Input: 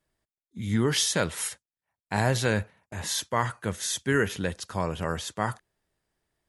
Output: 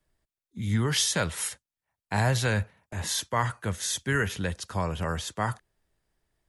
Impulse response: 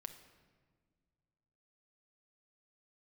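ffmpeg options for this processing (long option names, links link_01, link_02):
-filter_complex "[0:a]lowshelf=frequency=62:gain=11,acrossover=split=210|520|4000[link_01][link_02][link_03][link_04];[link_02]acompressor=threshold=-38dB:ratio=6[link_05];[link_01][link_05][link_03][link_04]amix=inputs=4:normalize=0"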